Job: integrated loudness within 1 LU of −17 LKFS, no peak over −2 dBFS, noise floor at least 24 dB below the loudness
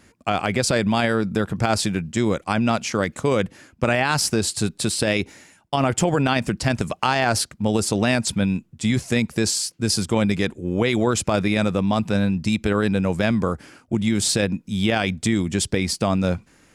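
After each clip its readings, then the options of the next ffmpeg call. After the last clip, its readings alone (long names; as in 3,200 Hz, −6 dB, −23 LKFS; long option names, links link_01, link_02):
integrated loudness −22.0 LKFS; sample peak −7.5 dBFS; target loudness −17.0 LKFS
→ -af "volume=5dB"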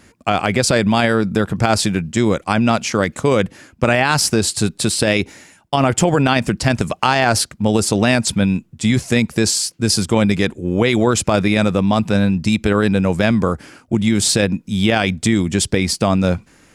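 integrated loudness −17.0 LKFS; sample peak −2.5 dBFS; background noise floor −53 dBFS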